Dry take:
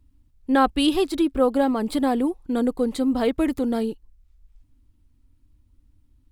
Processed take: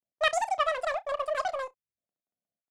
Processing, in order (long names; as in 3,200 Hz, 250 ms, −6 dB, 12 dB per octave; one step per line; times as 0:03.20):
noise gate with hold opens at −49 dBFS
high-pass filter 170 Hz 12 dB per octave
power curve on the samples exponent 1.4
high-frequency loss of the air 290 metres
repeating echo 73 ms, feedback 17%, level −16 dB
wrong playback speed 33 rpm record played at 78 rpm
level −2.5 dB